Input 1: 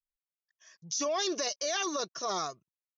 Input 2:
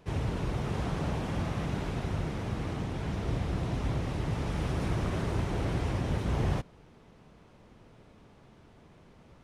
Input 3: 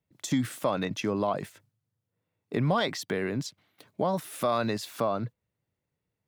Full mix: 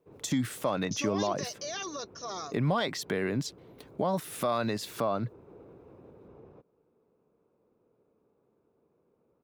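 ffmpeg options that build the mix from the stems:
-filter_complex "[0:a]volume=0.531[s0];[1:a]alimiter=level_in=1.41:limit=0.0631:level=0:latency=1:release=173,volume=0.708,bandpass=f=470:t=q:w=3:csg=0,aecho=1:1:0.8:0.43,volume=0.596[s1];[2:a]volume=1.06,asplit=2[s2][s3];[s3]apad=whole_len=416251[s4];[s1][s4]sidechaincompress=threshold=0.0178:ratio=8:attack=16:release=203[s5];[s0][s5][s2]amix=inputs=3:normalize=0,alimiter=limit=0.119:level=0:latency=1:release=198"

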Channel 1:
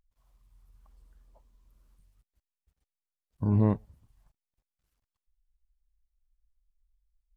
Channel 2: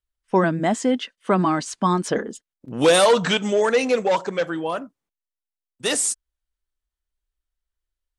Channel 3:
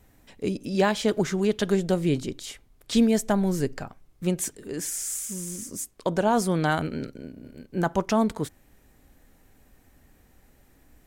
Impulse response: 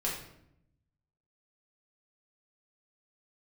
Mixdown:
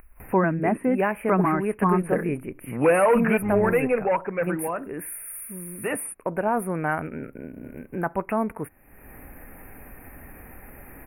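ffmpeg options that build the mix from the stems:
-filter_complex "[0:a]volume=0.596[s0];[1:a]lowshelf=f=180:g=11.5,volume=0.794[s1];[2:a]adelay=200,volume=1.06[s2];[s0][s1][s2]amix=inputs=3:normalize=0,lowshelf=f=420:g=-6,acompressor=mode=upward:threshold=0.0447:ratio=2.5,asuperstop=centerf=5200:order=20:qfactor=0.75"

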